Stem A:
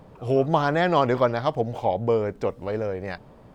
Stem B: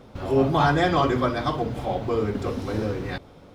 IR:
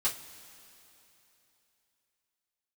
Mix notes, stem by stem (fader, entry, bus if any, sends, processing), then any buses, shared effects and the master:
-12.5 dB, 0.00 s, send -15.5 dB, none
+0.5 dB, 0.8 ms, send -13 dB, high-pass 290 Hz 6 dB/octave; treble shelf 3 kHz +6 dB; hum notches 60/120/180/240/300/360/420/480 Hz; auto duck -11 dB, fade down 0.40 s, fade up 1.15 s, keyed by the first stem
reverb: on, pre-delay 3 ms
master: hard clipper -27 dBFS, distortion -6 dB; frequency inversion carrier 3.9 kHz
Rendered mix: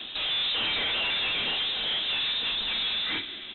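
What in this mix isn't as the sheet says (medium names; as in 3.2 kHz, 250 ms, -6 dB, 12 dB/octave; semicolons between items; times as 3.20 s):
stem A -12.5 dB -> -24.0 dB; stem B +0.5 dB -> +12.0 dB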